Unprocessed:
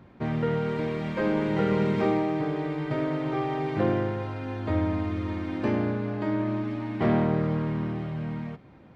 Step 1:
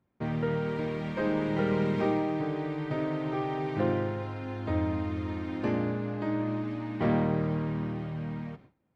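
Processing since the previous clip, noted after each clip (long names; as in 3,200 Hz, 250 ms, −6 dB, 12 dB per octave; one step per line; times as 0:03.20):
noise gate with hold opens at −40 dBFS
level −3 dB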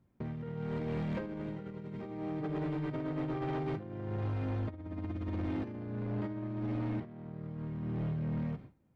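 low-shelf EQ 280 Hz +10.5 dB
compressor whose output falls as the input rises −28 dBFS, ratio −0.5
soft clipping −24.5 dBFS, distortion −13 dB
level −5.5 dB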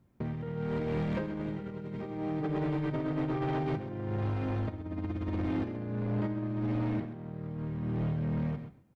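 single-tap delay 131 ms −12 dB
level +4 dB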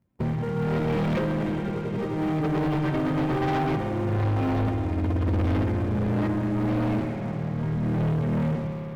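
spectral magnitudes quantised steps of 15 dB
spring reverb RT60 3.4 s, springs 57 ms, chirp 65 ms, DRR 4.5 dB
leveller curve on the samples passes 3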